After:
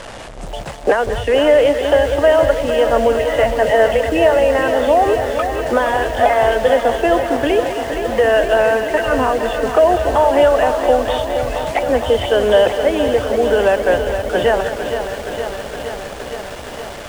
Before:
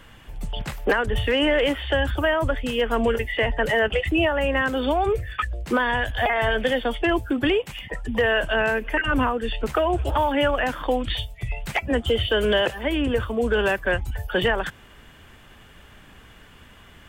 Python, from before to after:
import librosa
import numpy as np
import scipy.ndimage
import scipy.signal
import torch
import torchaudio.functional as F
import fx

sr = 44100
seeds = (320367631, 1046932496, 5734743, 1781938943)

p1 = fx.delta_mod(x, sr, bps=64000, step_db=-29.0)
p2 = scipy.signal.sosfilt(scipy.signal.butter(4, 10000.0, 'lowpass', fs=sr, output='sos'), p1)
p3 = fx.peak_eq(p2, sr, hz=620.0, db=13.0, octaves=1.2)
p4 = p3 + fx.echo_single(p3, sr, ms=195, db=-12.0, dry=0)
p5 = fx.echo_crushed(p4, sr, ms=466, feedback_pct=80, bits=6, wet_db=-8.5)
y = p5 * 10.0 ** (-1.0 / 20.0)